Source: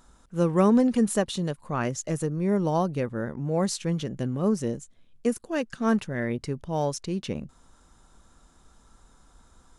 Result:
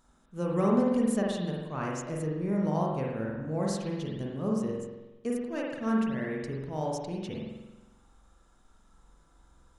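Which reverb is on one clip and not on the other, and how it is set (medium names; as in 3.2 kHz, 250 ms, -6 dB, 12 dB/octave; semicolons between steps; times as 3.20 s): spring tank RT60 1.1 s, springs 45 ms, chirp 70 ms, DRR -2.5 dB; trim -9 dB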